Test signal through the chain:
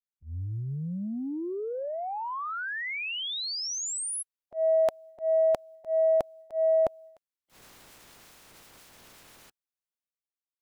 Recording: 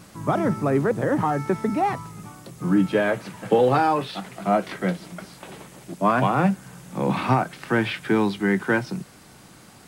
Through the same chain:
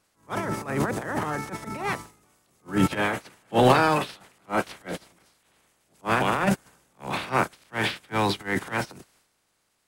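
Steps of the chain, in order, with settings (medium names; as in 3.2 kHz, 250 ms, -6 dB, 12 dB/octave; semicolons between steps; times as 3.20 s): spectral peaks clipped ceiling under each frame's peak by 16 dB; transient shaper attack -11 dB, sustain +9 dB; upward expansion 2.5:1, over -34 dBFS; trim +2.5 dB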